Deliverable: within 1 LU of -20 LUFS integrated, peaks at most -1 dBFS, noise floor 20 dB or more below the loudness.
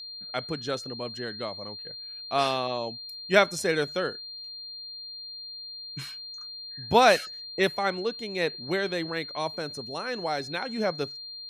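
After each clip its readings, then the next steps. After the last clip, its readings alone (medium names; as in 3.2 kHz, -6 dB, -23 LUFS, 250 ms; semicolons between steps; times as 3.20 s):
steady tone 4.2 kHz; tone level -38 dBFS; loudness -29.0 LUFS; peak level -5.5 dBFS; loudness target -20.0 LUFS
-> band-stop 4.2 kHz, Q 30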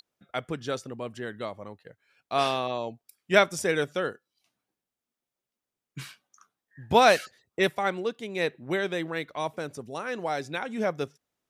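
steady tone not found; loudness -28.0 LUFS; peak level -6.0 dBFS; loudness target -20.0 LUFS
-> trim +8 dB; peak limiter -1 dBFS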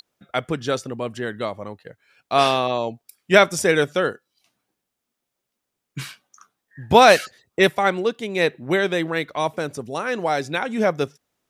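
loudness -20.5 LUFS; peak level -1.0 dBFS; noise floor -81 dBFS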